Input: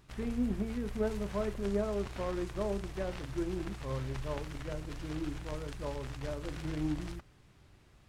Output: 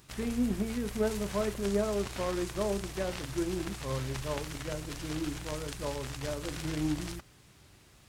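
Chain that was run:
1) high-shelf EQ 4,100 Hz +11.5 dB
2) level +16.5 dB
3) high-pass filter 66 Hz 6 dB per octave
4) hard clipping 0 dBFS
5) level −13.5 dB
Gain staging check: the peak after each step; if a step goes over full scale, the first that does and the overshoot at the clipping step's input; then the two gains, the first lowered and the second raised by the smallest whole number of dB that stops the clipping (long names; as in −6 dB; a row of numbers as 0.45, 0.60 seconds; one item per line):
−18.5, −2.0, −2.5, −2.5, −16.0 dBFS
no step passes full scale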